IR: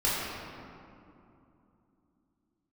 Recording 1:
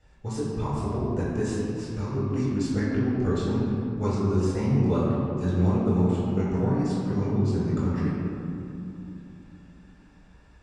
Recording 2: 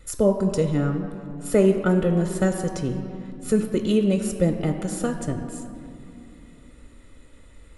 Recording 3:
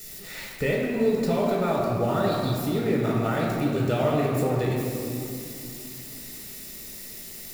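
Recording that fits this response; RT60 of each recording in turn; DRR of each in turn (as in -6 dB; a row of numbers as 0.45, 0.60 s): 1; 2.8, 2.8, 2.8 s; -10.0, 5.0, -4.5 dB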